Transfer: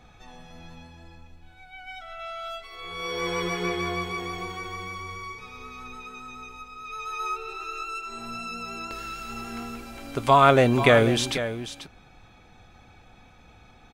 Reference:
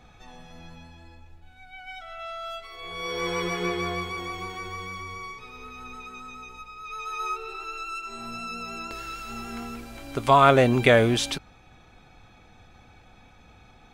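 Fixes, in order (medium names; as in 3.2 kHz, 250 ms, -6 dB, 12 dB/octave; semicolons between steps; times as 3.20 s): inverse comb 489 ms -11.5 dB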